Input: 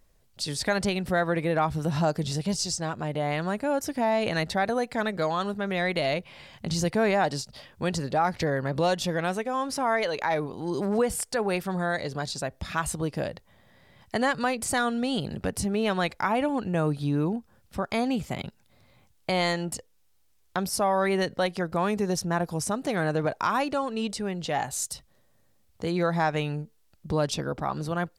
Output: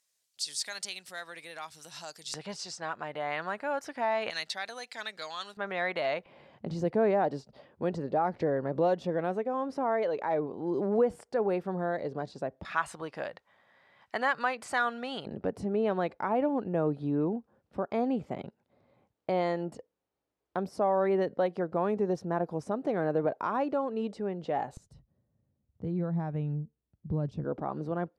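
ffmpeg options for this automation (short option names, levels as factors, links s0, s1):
-af "asetnsamples=n=441:p=0,asendcmd='2.34 bandpass f 1400;4.3 bandpass f 4500;5.57 bandpass f 1100;6.26 bandpass f 420;12.65 bandpass f 1300;15.26 bandpass f 440;24.77 bandpass f 120;27.44 bandpass f 370',bandpass=f=6900:t=q:w=0.87:csg=0"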